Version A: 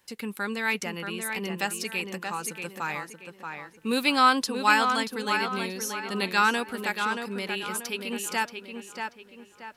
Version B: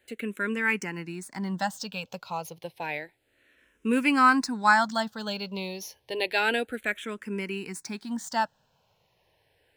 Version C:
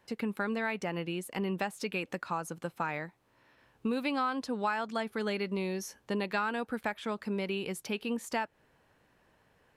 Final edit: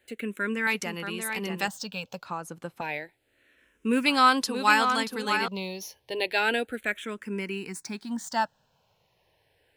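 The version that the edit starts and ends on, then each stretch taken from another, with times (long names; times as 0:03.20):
B
0:00.67–0:01.68: punch in from A
0:02.25–0:02.81: punch in from C
0:04.06–0:05.48: punch in from A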